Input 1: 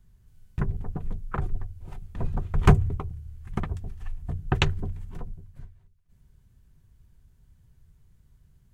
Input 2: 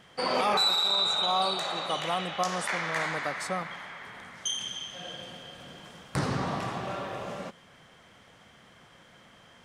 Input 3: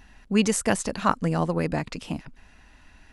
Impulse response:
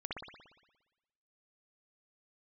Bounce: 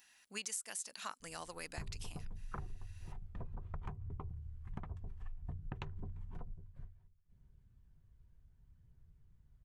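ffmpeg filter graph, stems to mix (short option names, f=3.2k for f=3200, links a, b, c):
-filter_complex "[0:a]lowpass=f=2.3k:p=1,aphaser=in_gain=1:out_gain=1:delay=2.1:decay=0.21:speed=0.64:type=triangular,adelay=1200,volume=-8.5dB[a];[2:a]aderivative,volume=0.5dB[b];[a]adynamicequalizer=threshold=0.00126:dfrequency=980:dqfactor=2.3:tfrequency=980:tqfactor=2.3:attack=5:release=100:ratio=0.375:range=3.5:mode=boostabove:tftype=bell,acompressor=threshold=-33dB:ratio=6,volume=0dB[c];[b][c]amix=inputs=2:normalize=0,acompressor=threshold=-40dB:ratio=5"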